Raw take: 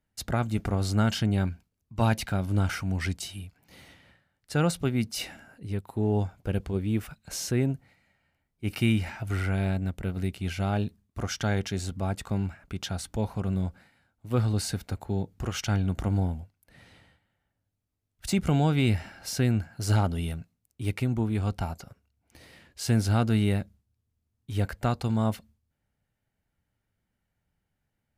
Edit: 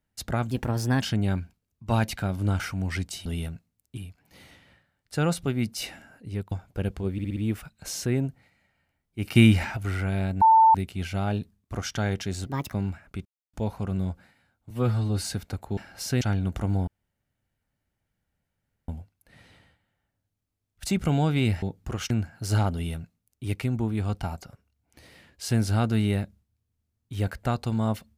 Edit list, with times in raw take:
0.51–1.11 s: speed 119%
5.89–6.21 s: delete
6.82 s: stutter 0.06 s, 5 plays
8.81–9.22 s: gain +7.5 dB
9.87–10.20 s: bleep 892 Hz -12.5 dBFS
11.92–12.29 s: speed 143%
12.82–13.10 s: mute
14.27–14.63 s: stretch 1.5×
15.16–15.64 s: swap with 19.04–19.48 s
16.30 s: insert room tone 2.01 s
20.11–20.83 s: copy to 3.35 s

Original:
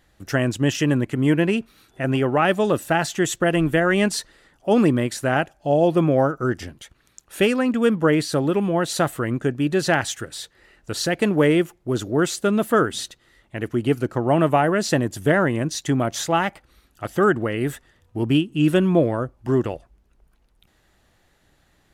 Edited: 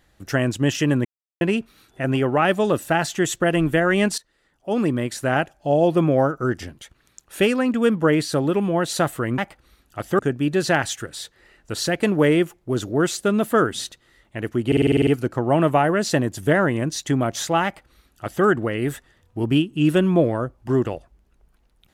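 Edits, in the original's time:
1.05–1.41 s: mute
4.18–5.32 s: fade in, from -20 dB
13.86 s: stutter 0.05 s, 9 plays
16.43–17.24 s: copy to 9.38 s

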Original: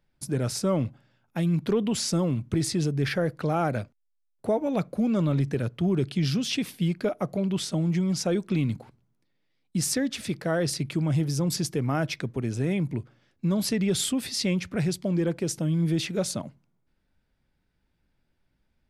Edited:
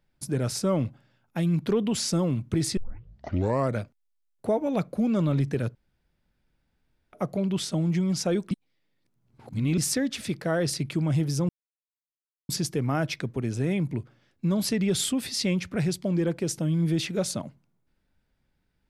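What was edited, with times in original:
2.77 s: tape start 1.03 s
5.75–7.13 s: room tone
8.51–9.78 s: reverse
11.49 s: insert silence 1.00 s

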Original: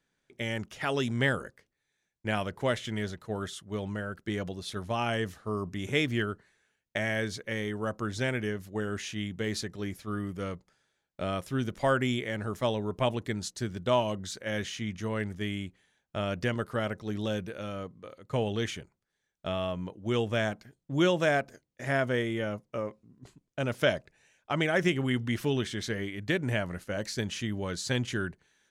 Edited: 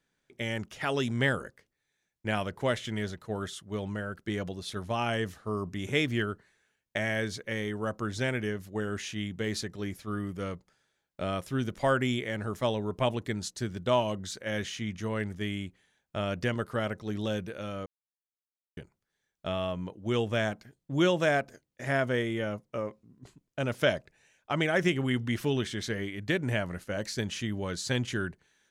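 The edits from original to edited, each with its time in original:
17.86–18.77 s: mute

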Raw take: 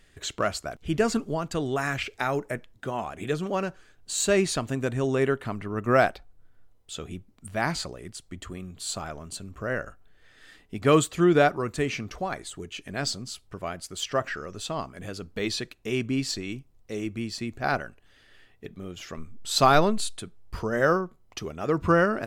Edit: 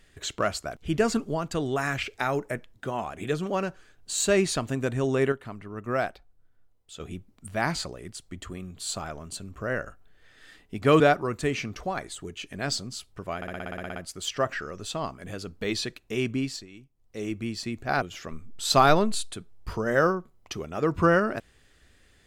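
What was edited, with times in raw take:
5.32–7.00 s: gain -7 dB
11.00–11.35 s: delete
13.71 s: stutter 0.06 s, 11 plays
16.09–17.01 s: dip -13.5 dB, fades 0.32 s
17.77–18.88 s: delete

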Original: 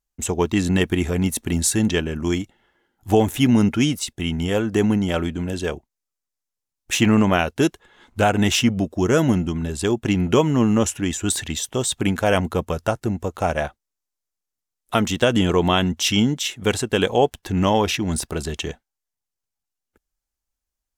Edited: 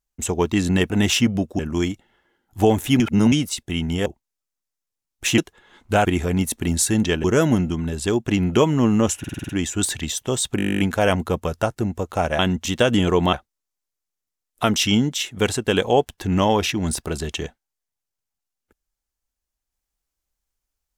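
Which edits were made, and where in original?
0.90–2.09 s: swap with 8.32–9.01 s
3.50–3.82 s: reverse
4.56–5.73 s: delete
7.05–7.65 s: delete
10.96 s: stutter 0.05 s, 7 plays
12.04 s: stutter 0.02 s, 12 plays
13.64–15.07 s: swap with 15.75–16.01 s

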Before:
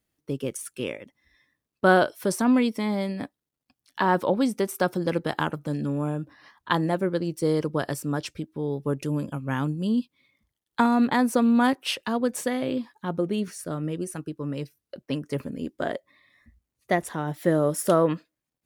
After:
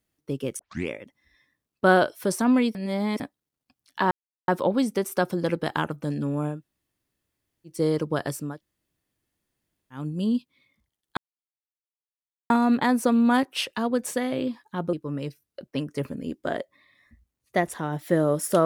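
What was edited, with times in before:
0.59 s: tape start 0.30 s
2.75–3.20 s: reverse
4.11 s: insert silence 0.37 s
6.19–7.35 s: room tone, crossfade 0.16 s
8.12–9.65 s: room tone, crossfade 0.24 s
10.80 s: insert silence 1.33 s
13.23–14.28 s: delete

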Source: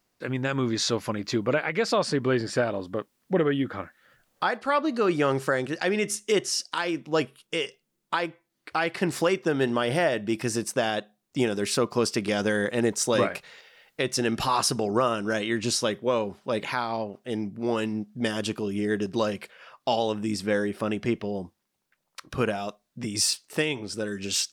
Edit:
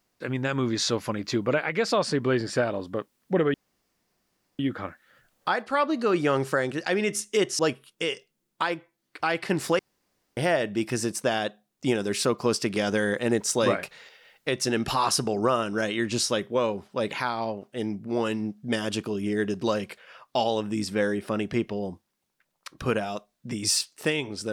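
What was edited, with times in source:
3.54 s: insert room tone 1.05 s
6.54–7.11 s: delete
9.31–9.89 s: room tone

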